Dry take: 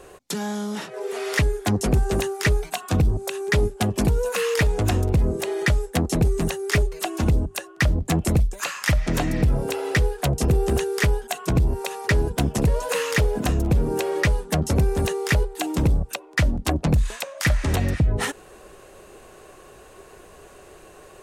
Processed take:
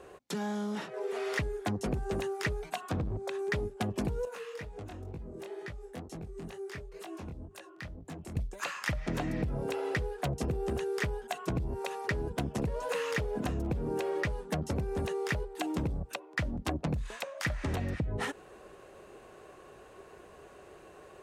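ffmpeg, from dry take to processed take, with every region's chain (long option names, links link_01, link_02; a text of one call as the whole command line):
ffmpeg -i in.wav -filter_complex "[0:a]asettb=1/sr,asplit=3[link_01][link_02][link_03];[link_01]atrim=end=2.914[link_04];[link_02]atrim=start=2.91:end=3.39,asetpts=PTS-STARTPTS,afade=type=in:duration=0.004:curve=qsin,afade=type=out:start_time=0.476:duration=0.004:curve=qsin,highshelf=frequency=7600:gain=-11.5,bandreject=frequency=2800:width=7.3,volume=18.5dB,asoftclip=hard,volume=-18.5dB[link_05];[link_03]atrim=start=3.386[link_06];[link_04][link_05]acrossfade=duration=0.004:curve1=hsin:curve2=qsin[link_07];[link_07][link_06]acrossfade=duration=0.004:curve1=qsin:curve2=hsin,asettb=1/sr,asplit=3[link_08][link_09][link_10];[link_08]atrim=end=4.254[link_11];[link_09]atrim=start=4.25:end=8.37,asetpts=PTS-STARTPTS,afade=type=in:duration=0.004:curve=qsin,afade=type=out:start_time=4.116:duration=0.004:curve=qsin,acompressor=threshold=-31dB:ratio=5:attack=3.2:release=140:knee=1:detection=peak,flanger=delay=18:depth=7.2:speed=2.1[link_12];[link_10]atrim=start=8.366[link_13];[link_11][link_12]acrossfade=duration=0.004:curve1=hsin:curve2=qsin[link_14];[link_14][link_13]acrossfade=duration=0.004:curve1=qsin:curve2=hsin,highpass=frequency=79:poles=1,highshelf=frequency=4700:gain=-11,acompressor=threshold=-24dB:ratio=6,volume=-5dB" out.wav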